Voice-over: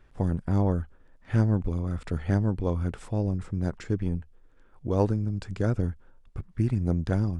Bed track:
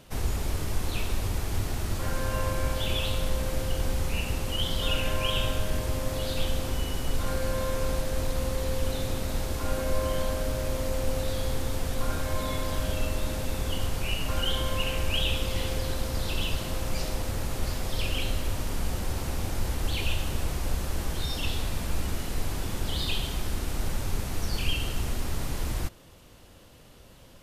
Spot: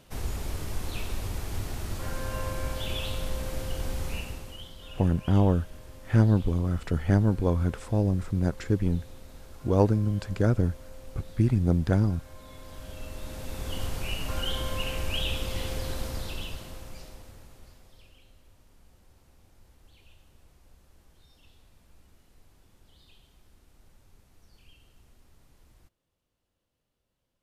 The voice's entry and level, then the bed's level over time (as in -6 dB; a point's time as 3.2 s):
4.80 s, +2.5 dB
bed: 4.13 s -4 dB
4.75 s -18 dB
12.41 s -18 dB
13.82 s -3 dB
16.05 s -3 dB
18.22 s -29 dB